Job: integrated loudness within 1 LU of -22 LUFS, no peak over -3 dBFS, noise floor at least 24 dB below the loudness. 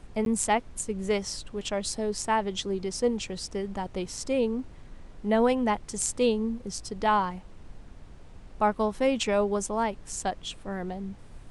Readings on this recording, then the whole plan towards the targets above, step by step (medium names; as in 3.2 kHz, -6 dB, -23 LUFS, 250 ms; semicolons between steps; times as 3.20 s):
dropouts 1; longest dropout 12 ms; noise floor -48 dBFS; noise floor target -53 dBFS; loudness -28.5 LUFS; peak level -10.5 dBFS; loudness target -22.0 LUFS
-> interpolate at 0.25 s, 12 ms; noise print and reduce 6 dB; trim +6.5 dB